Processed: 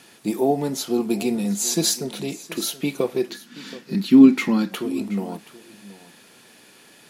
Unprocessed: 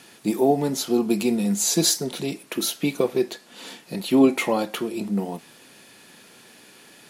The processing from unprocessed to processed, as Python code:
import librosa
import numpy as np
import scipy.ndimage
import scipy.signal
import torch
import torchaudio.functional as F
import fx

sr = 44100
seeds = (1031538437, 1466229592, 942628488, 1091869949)

p1 = fx.curve_eq(x, sr, hz=(110.0, 230.0, 610.0, 1500.0, 3000.0, 5100.0, 9900.0, 15000.0), db=(0, 12, -13, 4, -1, 3, -8, -2), at=(3.3, 4.72))
p2 = p1 + fx.echo_single(p1, sr, ms=726, db=-18.0, dry=0)
y = F.gain(torch.from_numpy(p2), -1.0).numpy()